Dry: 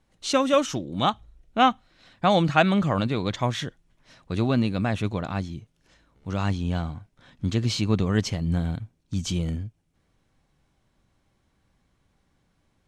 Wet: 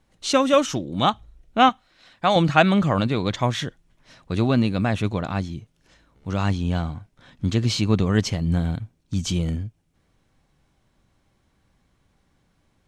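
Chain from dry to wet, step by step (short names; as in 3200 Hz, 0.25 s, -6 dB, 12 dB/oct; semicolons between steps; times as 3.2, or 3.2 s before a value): 1.69–2.36 low shelf 360 Hz -9 dB; gain +3 dB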